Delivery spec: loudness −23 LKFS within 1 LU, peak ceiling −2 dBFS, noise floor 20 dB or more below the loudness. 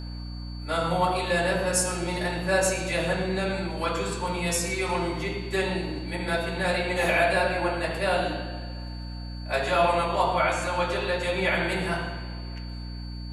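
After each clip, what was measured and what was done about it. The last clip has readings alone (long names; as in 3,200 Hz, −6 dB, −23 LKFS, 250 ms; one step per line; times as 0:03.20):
mains hum 60 Hz; hum harmonics up to 300 Hz; level of the hum −33 dBFS; interfering tone 4,500 Hz; level of the tone −46 dBFS; integrated loudness −26.0 LKFS; sample peak −10.0 dBFS; target loudness −23.0 LKFS
→ hum removal 60 Hz, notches 5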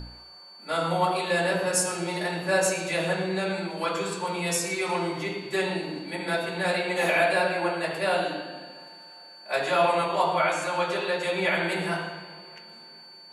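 mains hum none found; interfering tone 4,500 Hz; level of the tone −46 dBFS
→ notch filter 4,500 Hz, Q 30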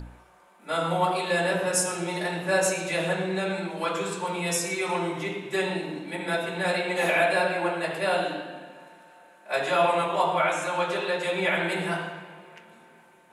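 interfering tone none found; integrated loudness −26.5 LKFS; sample peak −10.0 dBFS; target loudness −23.0 LKFS
→ level +3.5 dB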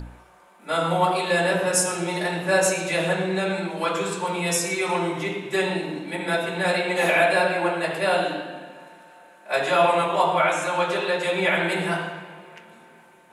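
integrated loudness −23.0 LKFS; sample peak −6.5 dBFS; background noise floor −52 dBFS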